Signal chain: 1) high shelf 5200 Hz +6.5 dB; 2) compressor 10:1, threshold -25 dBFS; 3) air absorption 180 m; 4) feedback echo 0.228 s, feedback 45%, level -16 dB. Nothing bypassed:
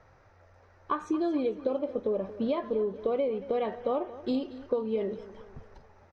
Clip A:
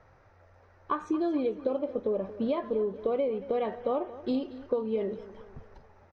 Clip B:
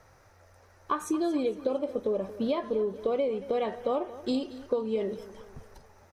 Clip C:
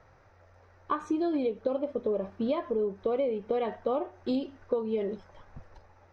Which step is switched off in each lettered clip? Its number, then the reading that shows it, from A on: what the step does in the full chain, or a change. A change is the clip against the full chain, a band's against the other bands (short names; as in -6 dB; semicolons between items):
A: 1, 4 kHz band -2.0 dB; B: 3, 4 kHz band +4.0 dB; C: 4, echo-to-direct -15.0 dB to none